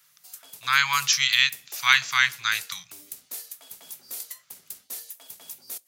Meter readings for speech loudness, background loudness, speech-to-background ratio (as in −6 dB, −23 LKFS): −21.0 LKFS, −39.0 LKFS, 18.0 dB